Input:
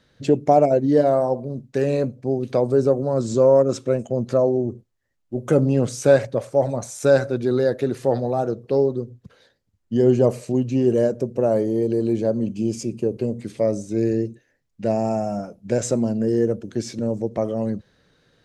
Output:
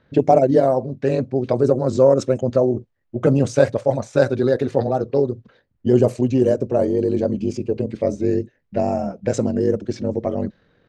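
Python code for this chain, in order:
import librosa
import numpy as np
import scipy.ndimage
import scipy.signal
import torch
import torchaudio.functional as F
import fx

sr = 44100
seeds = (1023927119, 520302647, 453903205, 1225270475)

y = fx.stretch_grains(x, sr, factor=0.59, grain_ms=44.0)
y = fx.env_lowpass(y, sr, base_hz=2200.0, full_db=-13.0)
y = y * librosa.db_to_amplitude(3.0)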